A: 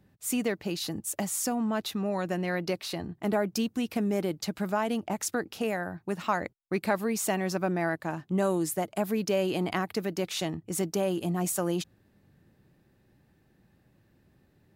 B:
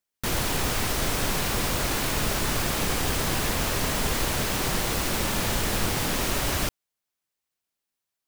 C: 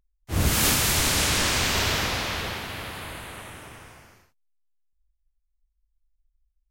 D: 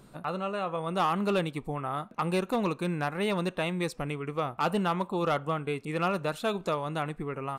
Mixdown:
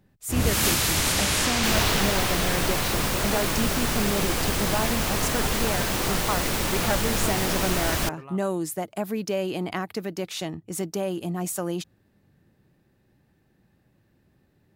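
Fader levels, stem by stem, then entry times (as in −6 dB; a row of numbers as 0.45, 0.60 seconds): 0.0, +0.5, −1.0, −9.0 decibels; 0.00, 1.40, 0.00, 0.80 seconds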